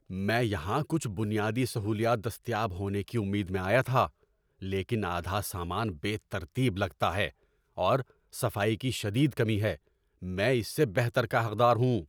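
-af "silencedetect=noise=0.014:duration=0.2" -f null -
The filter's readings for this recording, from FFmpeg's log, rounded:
silence_start: 4.07
silence_end: 4.62 | silence_duration: 0.56
silence_start: 7.29
silence_end: 7.78 | silence_duration: 0.49
silence_start: 8.02
silence_end: 8.34 | silence_duration: 0.32
silence_start: 9.75
silence_end: 10.23 | silence_duration: 0.48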